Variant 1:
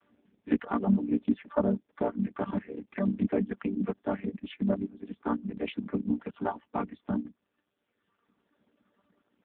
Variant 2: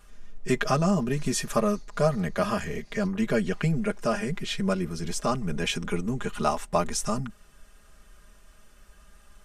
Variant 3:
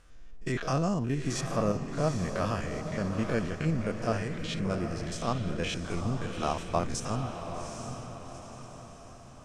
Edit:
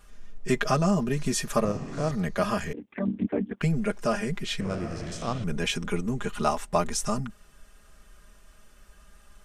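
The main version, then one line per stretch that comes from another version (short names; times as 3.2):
2
1.65–2.11 from 3
2.73–3.61 from 1
4.61–5.44 from 3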